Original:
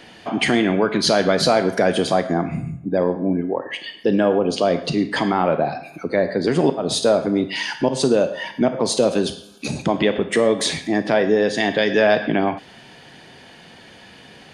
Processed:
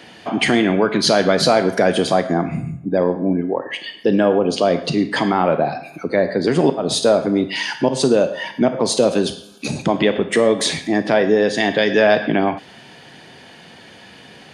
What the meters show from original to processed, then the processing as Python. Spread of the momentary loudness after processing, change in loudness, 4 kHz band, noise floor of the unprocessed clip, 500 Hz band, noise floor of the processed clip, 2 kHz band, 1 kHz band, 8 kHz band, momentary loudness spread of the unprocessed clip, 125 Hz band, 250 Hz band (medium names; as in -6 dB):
8 LU, +2.0 dB, +2.0 dB, -45 dBFS, +2.0 dB, -43 dBFS, +2.0 dB, +2.0 dB, +2.0 dB, 8 LU, +2.0 dB, +2.0 dB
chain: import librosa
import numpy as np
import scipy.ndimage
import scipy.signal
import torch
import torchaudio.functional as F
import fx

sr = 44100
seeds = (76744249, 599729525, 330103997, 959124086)

y = scipy.signal.sosfilt(scipy.signal.butter(2, 74.0, 'highpass', fs=sr, output='sos'), x)
y = F.gain(torch.from_numpy(y), 2.0).numpy()